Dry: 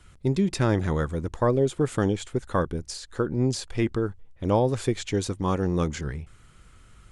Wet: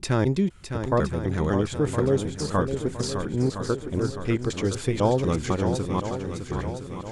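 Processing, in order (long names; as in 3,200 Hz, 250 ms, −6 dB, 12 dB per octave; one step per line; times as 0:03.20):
slices reordered back to front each 250 ms, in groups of 3
feedback echo with a long and a short gap by turns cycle 1,014 ms, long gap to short 1.5 to 1, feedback 49%, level −8 dB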